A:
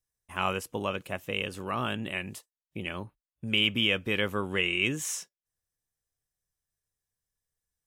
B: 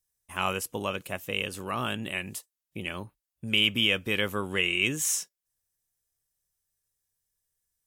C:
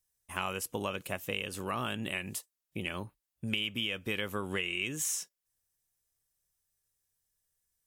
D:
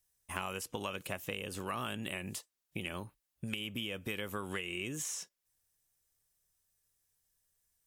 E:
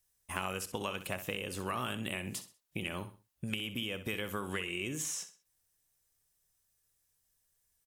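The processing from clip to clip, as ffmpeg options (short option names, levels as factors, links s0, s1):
-af "aemphasis=mode=production:type=cd"
-af "acompressor=threshold=0.0316:ratio=6"
-filter_complex "[0:a]acrossover=split=1100|7200[s0][s1][s2];[s0]acompressor=threshold=0.00891:ratio=4[s3];[s1]acompressor=threshold=0.00794:ratio=4[s4];[s2]acompressor=threshold=0.00282:ratio=4[s5];[s3][s4][s5]amix=inputs=3:normalize=0,volume=1.33"
-af "aecho=1:1:64|128|192:0.251|0.0779|0.0241,volume=1.19"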